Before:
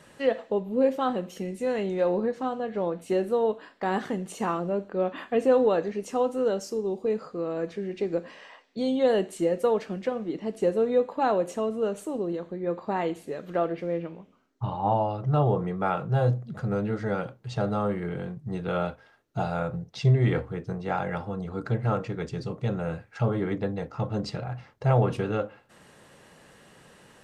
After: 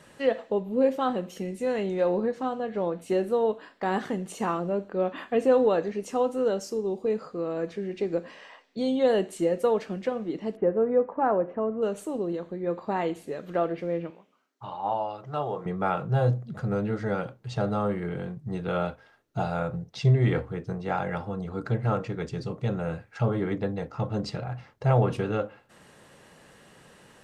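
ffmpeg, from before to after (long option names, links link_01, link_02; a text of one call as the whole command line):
ffmpeg -i in.wav -filter_complex "[0:a]asplit=3[link_01][link_02][link_03];[link_01]afade=type=out:start_time=10.55:duration=0.02[link_04];[link_02]lowpass=frequency=1800:width=0.5412,lowpass=frequency=1800:width=1.3066,afade=type=in:start_time=10.55:duration=0.02,afade=type=out:start_time=11.81:duration=0.02[link_05];[link_03]afade=type=in:start_time=11.81:duration=0.02[link_06];[link_04][link_05][link_06]amix=inputs=3:normalize=0,asettb=1/sr,asplit=3[link_07][link_08][link_09];[link_07]atrim=end=14.104[link_10];[link_08]atrim=start=14.1:end=15.66,asetpts=PTS-STARTPTS,afade=type=in:duration=0.004:curve=qsin,afade=type=out:start_time=1.556:duration=0.004:curve=qsin,highpass=frequency=800:poles=1[link_11];[link_09]atrim=start=15.656[link_12];[link_10][link_11]acrossfade=duration=0.004:curve1=hsin:curve2=qsin[link_13];[link_13][link_12]acrossfade=duration=0.004:curve1=qsin:curve2=hsin" out.wav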